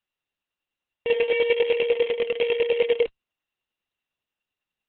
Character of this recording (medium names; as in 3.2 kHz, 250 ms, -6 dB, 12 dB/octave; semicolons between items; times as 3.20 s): a buzz of ramps at a fixed pitch in blocks of 16 samples; chopped level 10 Hz, depth 60%, duty 25%; Opus